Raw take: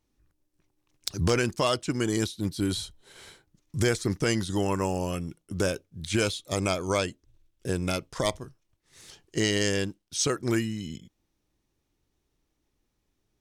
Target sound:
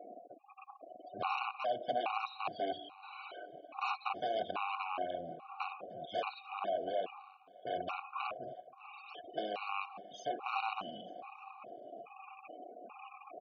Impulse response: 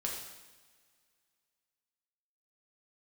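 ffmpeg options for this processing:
-filter_complex "[0:a]aeval=exprs='val(0)+0.5*0.0447*sgn(val(0))':c=same,acrossover=split=360[a][b];[b]acompressor=threshold=-27dB:ratio=4[c];[a][c]amix=inputs=2:normalize=0,asplit=2[d][e];[1:a]atrim=start_sample=2205[f];[e][f]afir=irnorm=-1:irlink=0,volume=-5.5dB[g];[d][g]amix=inputs=2:normalize=0,aeval=exprs='0.447*(cos(1*acos(clip(val(0)/0.447,-1,1)))-cos(1*PI/2))+0.0316*(cos(7*acos(clip(val(0)/0.447,-1,1)))-cos(7*PI/2))':c=same,aeval=exprs='(mod(7.5*val(0)+1,2)-1)/7.5':c=same,asplit=3[h][i][j];[h]bandpass=f=730:t=q:w=8,volume=0dB[k];[i]bandpass=f=1.09k:t=q:w=8,volume=-6dB[l];[j]bandpass=f=2.44k:t=q:w=8,volume=-9dB[m];[k][l][m]amix=inputs=3:normalize=0,afftfilt=real='re*gte(hypot(re,im),0.00355)':imag='im*gte(hypot(re,im),0.00355)':win_size=1024:overlap=0.75,highpass=97,aecho=1:1:299|598|897|1196:0.0794|0.0461|0.0267|0.0155,afftfilt=real='re*gt(sin(2*PI*1.2*pts/sr)*(1-2*mod(floor(b*sr/1024/740),2)),0)':imag='im*gt(sin(2*PI*1.2*pts/sr)*(1-2*mod(floor(b*sr/1024/740),2)),0)':win_size=1024:overlap=0.75,volume=5.5dB"

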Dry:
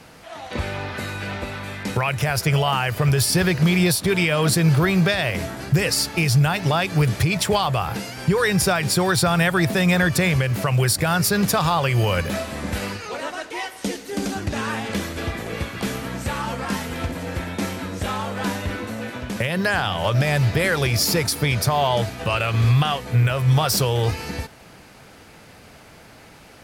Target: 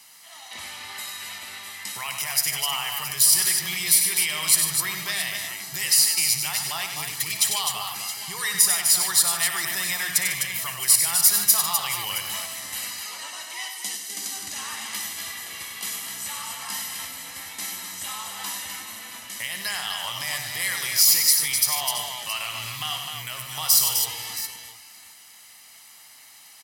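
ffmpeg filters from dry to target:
-af "aderivative,aecho=1:1:1:0.59,aecho=1:1:59|97|150|254|670:0.251|0.447|0.224|0.501|0.188,volume=3.5dB"

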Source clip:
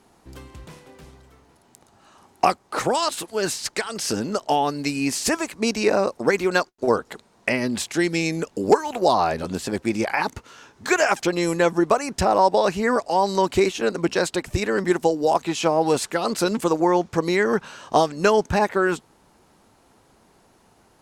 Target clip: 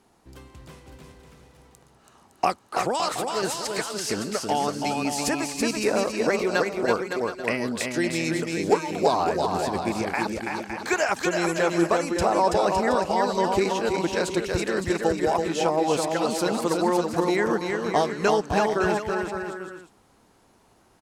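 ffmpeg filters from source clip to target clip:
-af "aecho=1:1:330|561|722.7|835.9|915.1:0.631|0.398|0.251|0.158|0.1,volume=-4.5dB"

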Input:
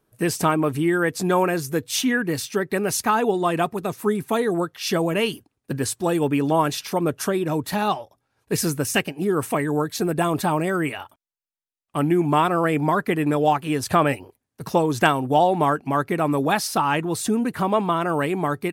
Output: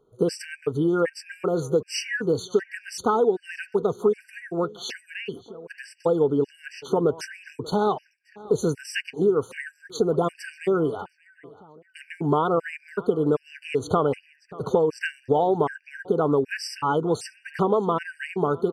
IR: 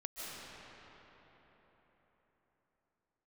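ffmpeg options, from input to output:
-filter_complex "[0:a]lowpass=5.6k,asettb=1/sr,asplit=3[a][b][c];[a]atrim=end=5.064[d];[b]atrim=start=5.06:end=6.85,asetpts=PTS-STARTPTS,afade=t=in:d=0.004:c=qsin,afade=t=out:st=1.786:d=0.004:c=qsin,acrossover=split=2900[e][f];[f]acompressor=threshold=-43dB:ratio=4:attack=1:release=60[g];[e][g]amix=inputs=2:normalize=0[h];[c]atrim=start=6.846[i];[d][h]acrossfade=d=0.004:c1=hsin:c2=qsin[j];[j][i]acrossfade=d=0.004:c1=qsin:c2=hsin,superequalizer=7b=3.16:13b=0.631,acompressor=threshold=-19dB:ratio=5,asplit=2[k][l];[l]adelay=586,lowpass=f=4.1k:p=1,volume=-20dB,asplit=2[m][n];[n]adelay=586,lowpass=f=4.1k:p=1,volume=0.42,asplit=2[o][p];[p]adelay=586,lowpass=f=4.1k:p=1,volume=0.42[q];[k][m][o][q]amix=inputs=4:normalize=0,afftfilt=real='re*gt(sin(2*PI*1.3*pts/sr)*(1-2*mod(floor(b*sr/1024/1500),2)),0)':imag='im*gt(sin(2*PI*1.3*pts/sr)*(1-2*mod(floor(b*sr/1024/1500),2)),0)':win_size=1024:overlap=0.75,volume=1.5dB"

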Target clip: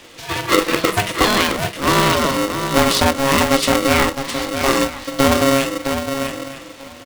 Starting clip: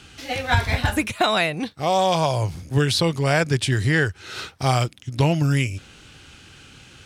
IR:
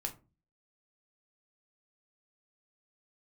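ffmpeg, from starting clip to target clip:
-filter_complex "[0:a]asplit=2[a][b];[b]aecho=0:1:940|1880|2820:0.15|0.0509|0.0173[c];[a][c]amix=inputs=2:normalize=0,aeval=exprs='0.531*(cos(1*acos(clip(val(0)/0.531,-1,1)))-cos(1*PI/2))+0.0596*(cos(4*acos(clip(val(0)/0.531,-1,1)))-cos(4*PI/2))':c=same,asplit=2[d][e];[e]adelay=42,volume=-12dB[f];[d][f]amix=inputs=2:normalize=0,asplit=2[g][h];[h]aecho=0:1:662:0.447[i];[g][i]amix=inputs=2:normalize=0,aeval=exprs='val(0)*sgn(sin(2*PI*410*n/s))':c=same,volume=3dB"

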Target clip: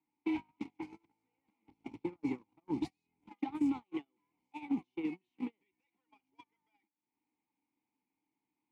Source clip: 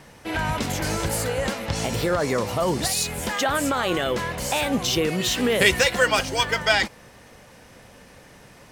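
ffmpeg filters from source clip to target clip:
-filter_complex "[0:a]acompressor=threshold=-38dB:ratio=4,asettb=1/sr,asplit=3[a][b][c];[a]atrim=end=1.624[d];[b]atrim=start=1.62:end=3.84,asetpts=PTS-STARTPTS,afade=t=in:d=0.004:c=qsin,afade=t=out:st=2.216:d=0.004:c=qsin,lowshelf=f=260:g=9[e];[c]atrim=start=3.836[f];[d][e]acrossfade=d=0.004:c1=hsin:c2=qsin[g];[g][f]acrossfade=d=0.004:c1=qsin:c2=hsin,asoftclip=type=tanh:threshold=-33.5dB,asplit=3[h][i][j];[h]bandpass=f=300:t=q:w=8,volume=0dB[k];[i]bandpass=f=870:t=q:w=8,volume=-6dB[l];[j]bandpass=f=2.24k:t=q:w=8,volume=-9dB[m];[k][l][m]amix=inputs=3:normalize=0,agate=range=-44dB:threshold=-48dB:ratio=16:detection=peak,acrossover=split=220|3000[n][o][p];[o]acompressor=threshold=-51dB:ratio=6[q];[n][q][p]amix=inputs=3:normalize=0,volume=17.5dB"

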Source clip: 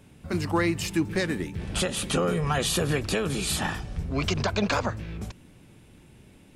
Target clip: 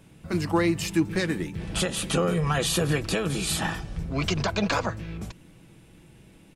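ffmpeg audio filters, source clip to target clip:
-af "aecho=1:1:6.1:0.34"

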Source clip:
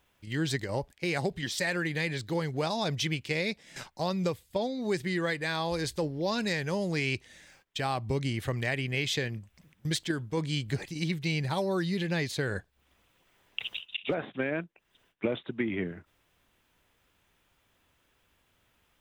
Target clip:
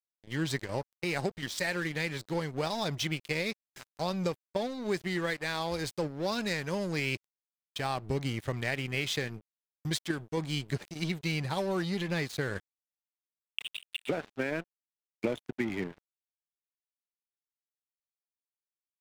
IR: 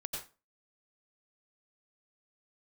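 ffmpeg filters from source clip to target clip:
-af "aeval=exprs='sgn(val(0))*max(abs(val(0))-0.00891,0)':c=same"

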